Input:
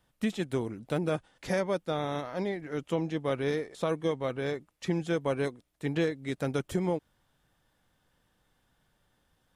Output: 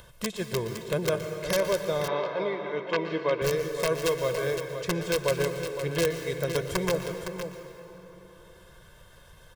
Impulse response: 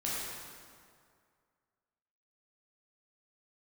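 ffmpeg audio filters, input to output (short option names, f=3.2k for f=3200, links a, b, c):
-filter_complex "[0:a]aeval=exprs='(mod(9.44*val(0)+1,2)-1)/9.44':c=same,aecho=1:1:512:0.355,asettb=1/sr,asplit=3[a][b][c];[a]atrim=end=4.044[d];[b]atrim=start=4.04:end=4.56,asetpts=PTS-STARTPTS,afade=t=in:d=0.004:c=qsin,afade=t=out:st=0.516:d=0.004:c=qsin,acrusher=bits=4:mode=log:mix=0:aa=0.000001[e];[c]atrim=start=4.556[f];[d][e]acrossfade=d=0.004:c1=hsin:c2=qsin[g];[g][f]acrossfade=d=0.004:c1=qsin:c2=hsin,aecho=1:1:1.9:0.78,asplit=2[h][i];[1:a]atrim=start_sample=2205,adelay=119[j];[i][j]afir=irnorm=-1:irlink=0,volume=-12.5dB[k];[h][k]amix=inputs=2:normalize=0,acompressor=mode=upward:threshold=-38dB:ratio=2.5,asettb=1/sr,asplit=3[l][m][n];[l]atrim=end=2.084[o];[m]atrim=start=2.08:end=3.42,asetpts=PTS-STARTPTS,afade=t=in:d=0.004:c=qsin,afade=t=out:st=1.336:d=0.004:c=qsin,highpass=220,equalizer=f=300:t=q:w=4:g=4,equalizer=f=950:t=q:w=4:g=6,equalizer=f=2.4k:t=q:w=4:g=4,lowpass=f=4.3k:w=0.5412,lowpass=f=4.3k:w=1.3066[p];[n]atrim=start=3.416[q];[o][p]acrossfade=d=0.004:c1=hsin:c2=qsin[r];[r][q]acrossfade=d=0.004:c1=qsin:c2=hsin"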